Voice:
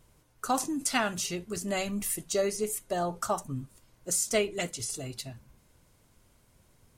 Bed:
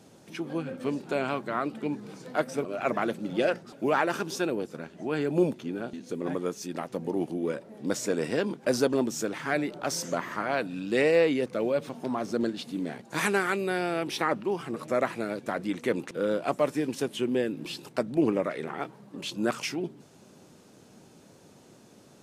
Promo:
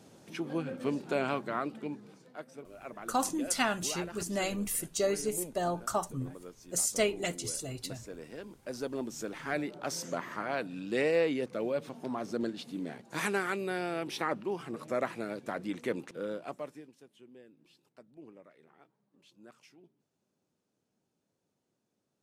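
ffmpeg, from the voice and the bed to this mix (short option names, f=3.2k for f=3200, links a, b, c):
-filter_complex "[0:a]adelay=2650,volume=-1.5dB[a];[1:a]volume=9.5dB,afade=t=out:st=1.33:d=0.99:silence=0.177828,afade=t=in:st=8.58:d=0.98:silence=0.266073,afade=t=out:st=15.84:d=1.08:silence=0.0794328[b];[a][b]amix=inputs=2:normalize=0"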